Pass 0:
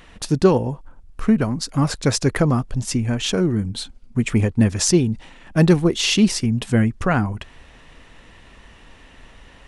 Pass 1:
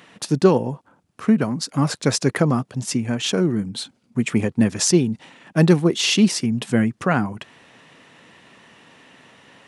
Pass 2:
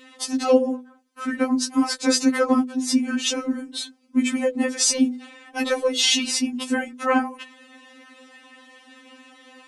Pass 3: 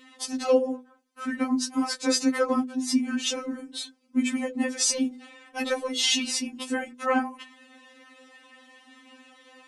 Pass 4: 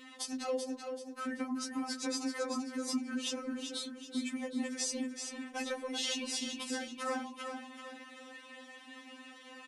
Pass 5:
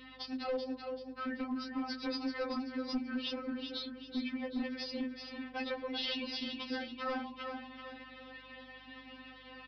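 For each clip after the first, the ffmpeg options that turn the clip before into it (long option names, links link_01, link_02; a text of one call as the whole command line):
ffmpeg -i in.wav -af "highpass=frequency=130:width=0.5412,highpass=frequency=130:width=1.3066" out.wav
ffmpeg -i in.wav -af "bandreject=frequency=50:width_type=h:width=6,bandreject=frequency=100:width_type=h:width=6,bandreject=frequency=150:width_type=h:width=6,bandreject=frequency=200:width_type=h:width=6,bandreject=frequency=250:width_type=h:width=6,bandreject=frequency=300:width_type=h:width=6,bandreject=frequency=350:width_type=h:width=6,bandreject=frequency=400:width_type=h:width=6,bandreject=frequency=450:width_type=h:width=6,bandreject=frequency=500:width_type=h:width=6,afftfilt=real='re*3.46*eq(mod(b,12),0)':imag='im*3.46*eq(mod(b,12),0)':win_size=2048:overlap=0.75,volume=3.5dB" out.wav
ffmpeg -i in.wav -af "flanger=delay=4.8:depth=1.4:regen=-61:speed=0.67:shape=sinusoidal" out.wav
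ffmpeg -i in.wav -filter_complex "[0:a]acompressor=threshold=-40dB:ratio=2.5,asplit=2[link_01][link_02];[link_02]aecho=0:1:384|768|1152|1536:0.473|0.18|0.0683|0.026[link_03];[link_01][link_03]amix=inputs=2:normalize=0" out.wav
ffmpeg -i in.wav -af "aeval=exprs='val(0)+0.000501*(sin(2*PI*50*n/s)+sin(2*PI*2*50*n/s)/2+sin(2*PI*3*50*n/s)/3+sin(2*PI*4*50*n/s)/4+sin(2*PI*5*50*n/s)/5)':channel_layout=same,aresample=11025,aeval=exprs='clip(val(0),-1,0.0266)':channel_layout=same,aresample=44100" out.wav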